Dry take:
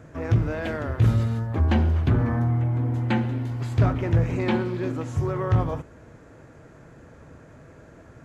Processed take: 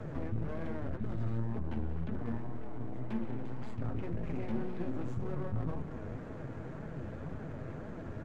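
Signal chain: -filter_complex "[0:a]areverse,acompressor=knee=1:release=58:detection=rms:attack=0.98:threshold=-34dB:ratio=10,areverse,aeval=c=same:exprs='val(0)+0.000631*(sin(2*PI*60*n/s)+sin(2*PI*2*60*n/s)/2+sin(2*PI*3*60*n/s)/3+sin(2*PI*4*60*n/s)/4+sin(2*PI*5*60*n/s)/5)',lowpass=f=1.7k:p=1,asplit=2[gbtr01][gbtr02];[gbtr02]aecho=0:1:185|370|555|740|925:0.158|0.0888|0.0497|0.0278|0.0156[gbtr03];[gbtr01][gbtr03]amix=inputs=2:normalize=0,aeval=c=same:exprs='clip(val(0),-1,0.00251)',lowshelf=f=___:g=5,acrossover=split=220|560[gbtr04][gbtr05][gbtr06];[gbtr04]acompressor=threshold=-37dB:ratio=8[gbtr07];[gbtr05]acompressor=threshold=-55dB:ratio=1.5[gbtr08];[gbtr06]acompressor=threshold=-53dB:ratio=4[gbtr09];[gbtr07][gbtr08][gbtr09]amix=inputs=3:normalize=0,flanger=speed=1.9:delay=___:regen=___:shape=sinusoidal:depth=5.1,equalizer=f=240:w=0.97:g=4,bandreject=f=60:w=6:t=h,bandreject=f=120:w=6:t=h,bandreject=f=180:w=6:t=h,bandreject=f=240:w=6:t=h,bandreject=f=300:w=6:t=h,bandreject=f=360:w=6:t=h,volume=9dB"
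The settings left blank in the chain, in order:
150, 4.6, 49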